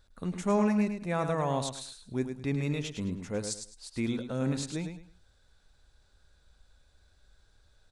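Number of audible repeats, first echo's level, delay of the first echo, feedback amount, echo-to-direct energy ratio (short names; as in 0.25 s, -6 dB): 3, -7.5 dB, 0.105 s, 25%, -7.0 dB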